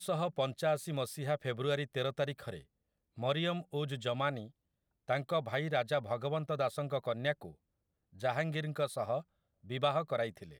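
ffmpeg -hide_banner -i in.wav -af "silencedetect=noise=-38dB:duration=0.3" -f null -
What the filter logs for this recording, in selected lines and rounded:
silence_start: 2.56
silence_end: 3.18 | silence_duration: 0.63
silence_start: 4.44
silence_end: 5.09 | silence_duration: 0.65
silence_start: 7.47
silence_end: 8.21 | silence_duration: 0.75
silence_start: 9.20
silence_end: 9.70 | silence_duration: 0.50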